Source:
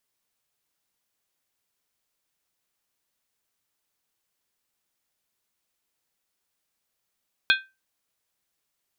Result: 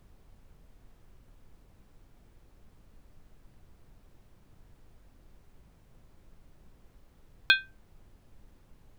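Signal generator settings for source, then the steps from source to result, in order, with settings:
skin hit, lowest mode 1.56 kHz, modes 5, decay 0.25 s, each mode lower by 2 dB, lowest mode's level -15 dB
added noise brown -55 dBFS

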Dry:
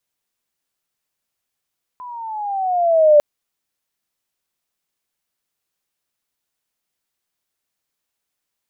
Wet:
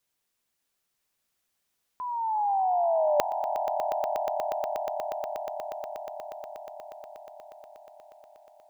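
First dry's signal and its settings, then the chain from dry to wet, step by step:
gliding synth tone sine, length 1.20 s, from 1.01 kHz, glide -9.5 st, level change +25 dB, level -6 dB
reverse; compression 12:1, threshold -23 dBFS; reverse; echo with a slow build-up 120 ms, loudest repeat 8, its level -12.5 dB

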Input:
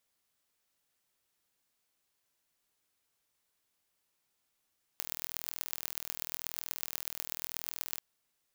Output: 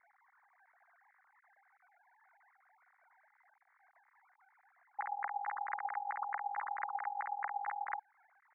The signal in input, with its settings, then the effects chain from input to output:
pulse train 40.9 per s, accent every 5, -6.5 dBFS 3.00 s
formants replaced by sine waves; steep low-pass 2.1 kHz 96 dB/octave; in parallel at +0.5 dB: compression, threshold -50 dBFS

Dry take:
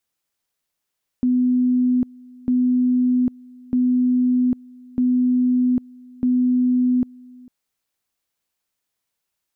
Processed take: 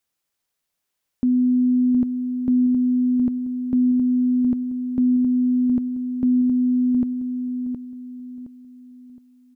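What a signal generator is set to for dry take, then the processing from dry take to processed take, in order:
two-level tone 250 Hz -14.5 dBFS, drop 25.5 dB, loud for 0.80 s, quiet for 0.45 s, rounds 5
feedback delay 717 ms, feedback 34%, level -7.5 dB

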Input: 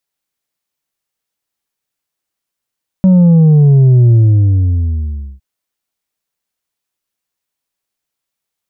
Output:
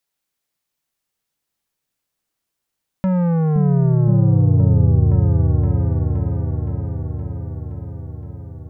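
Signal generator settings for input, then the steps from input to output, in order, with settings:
sub drop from 190 Hz, over 2.36 s, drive 4 dB, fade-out 1.28 s, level -4.5 dB
compression 6:1, threshold -10 dBFS; saturation -15.5 dBFS; delay with an opening low-pass 519 ms, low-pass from 200 Hz, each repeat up 1 oct, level 0 dB

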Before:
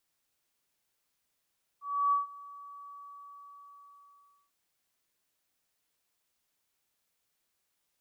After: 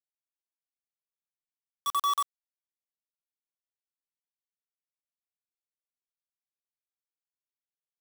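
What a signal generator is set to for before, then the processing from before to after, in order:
ADSR sine 1.14 kHz, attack 310 ms, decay 143 ms, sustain -22 dB, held 1.08 s, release 1620 ms -22.5 dBFS
random holes in the spectrogram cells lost 35%; companded quantiser 2-bit

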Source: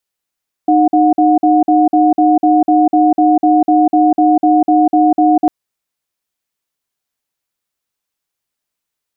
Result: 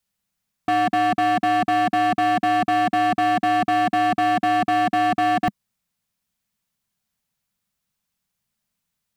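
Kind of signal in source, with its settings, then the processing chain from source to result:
cadence 308 Hz, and 726 Hz, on 0.20 s, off 0.05 s, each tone -9.5 dBFS 4.80 s
resonant low shelf 250 Hz +7 dB, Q 3; hard clipper -17.5 dBFS

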